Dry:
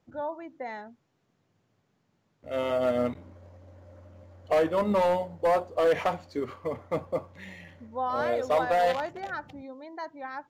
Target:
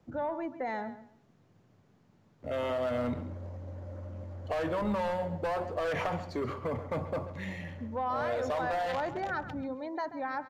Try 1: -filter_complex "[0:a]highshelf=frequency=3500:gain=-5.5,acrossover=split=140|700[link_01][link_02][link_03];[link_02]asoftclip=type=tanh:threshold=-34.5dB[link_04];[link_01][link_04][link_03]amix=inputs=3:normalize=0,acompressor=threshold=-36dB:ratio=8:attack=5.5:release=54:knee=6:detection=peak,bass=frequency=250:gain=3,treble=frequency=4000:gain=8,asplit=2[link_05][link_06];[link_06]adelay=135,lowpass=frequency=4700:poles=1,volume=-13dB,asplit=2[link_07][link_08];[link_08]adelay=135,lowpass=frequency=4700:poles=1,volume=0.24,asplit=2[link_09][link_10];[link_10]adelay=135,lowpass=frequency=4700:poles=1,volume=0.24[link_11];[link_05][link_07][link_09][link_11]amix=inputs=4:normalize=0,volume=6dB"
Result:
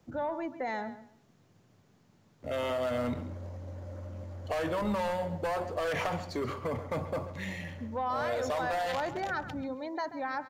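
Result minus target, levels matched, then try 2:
8,000 Hz band +6.5 dB
-filter_complex "[0:a]highshelf=frequency=3500:gain=-15,acrossover=split=140|700[link_01][link_02][link_03];[link_02]asoftclip=type=tanh:threshold=-34.5dB[link_04];[link_01][link_04][link_03]amix=inputs=3:normalize=0,acompressor=threshold=-36dB:ratio=8:attack=5.5:release=54:knee=6:detection=peak,bass=frequency=250:gain=3,treble=frequency=4000:gain=8,asplit=2[link_05][link_06];[link_06]adelay=135,lowpass=frequency=4700:poles=1,volume=-13dB,asplit=2[link_07][link_08];[link_08]adelay=135,lowpass=frequency=4700:poles=1,volume=0.24,asplit=2[link_09][link_10];[link_10]adelay=135,lowpass=frequency=4700:poles=1,volume=0.24[link_11];[link_05][link_07][link_09][link_11]amix=inputs=4:normalize=0,volume=6dB"

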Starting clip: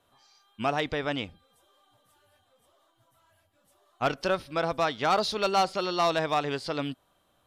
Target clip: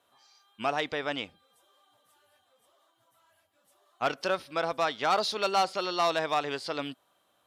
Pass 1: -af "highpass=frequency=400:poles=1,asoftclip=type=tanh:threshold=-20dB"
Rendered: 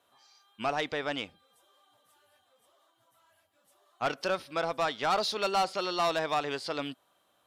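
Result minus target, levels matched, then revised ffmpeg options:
soft clipping: distortion +13 dB
-af "highpass=frequency=400:poles=1,asoftclip=type=tanh:threshold=-11.5dB"

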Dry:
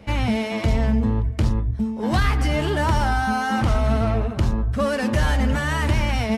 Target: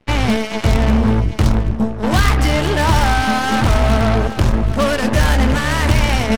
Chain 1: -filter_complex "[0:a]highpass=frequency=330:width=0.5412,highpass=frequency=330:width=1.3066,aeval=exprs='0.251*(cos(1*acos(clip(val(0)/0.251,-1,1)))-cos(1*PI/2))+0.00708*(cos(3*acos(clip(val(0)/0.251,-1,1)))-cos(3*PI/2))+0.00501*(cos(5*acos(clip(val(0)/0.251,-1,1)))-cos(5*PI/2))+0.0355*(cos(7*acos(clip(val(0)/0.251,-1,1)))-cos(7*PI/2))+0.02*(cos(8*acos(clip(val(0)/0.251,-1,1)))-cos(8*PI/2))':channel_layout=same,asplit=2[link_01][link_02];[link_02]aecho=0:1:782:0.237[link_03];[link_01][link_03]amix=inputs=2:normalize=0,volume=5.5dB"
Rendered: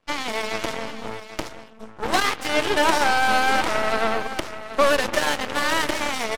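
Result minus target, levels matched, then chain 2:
250 Hz band −7.5 dB
-filter_complex "[0:a]aeval=exprs='0.251*(cos(1*acos(clip(val(0)/0.251,-1,1)))-cos(1*PI/2))+0.00708*(cos(3*acos(clip(val(0)/0.251,-1,1)))-cos(3*PI/2))+0.00501*(cos(5*acos(clip(val(0)/0.251,-1,1)))-cos(5*PI/2))+0.0355*(cos(7*acos(clip(val(0)/0.251,-1,1)))-cos(7*PI/2))+0.02*(cos(8*acos(clip(val(0)/0.251,-1,1)))-cos(8*PI/2))':channel_layout=same,asplit=2[link_01][link_02];[link_02]aecho=0:1:782:0.237[link_03];[link_01][link_03]amix=inputs=2:normalize=0,volume=5.5dB"

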